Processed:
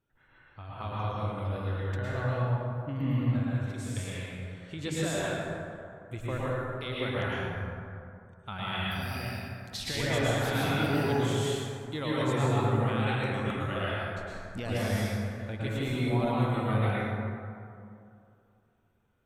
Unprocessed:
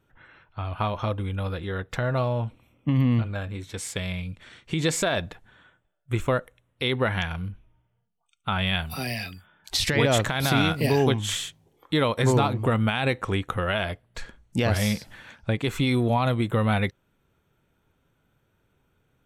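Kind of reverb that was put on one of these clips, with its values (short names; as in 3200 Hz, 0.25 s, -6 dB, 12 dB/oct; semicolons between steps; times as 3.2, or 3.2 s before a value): plate-style reverb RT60 2.5 s, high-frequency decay 0.4×, pre-delay 95 ms, DRR -7.5 dB; gain -13.5 dB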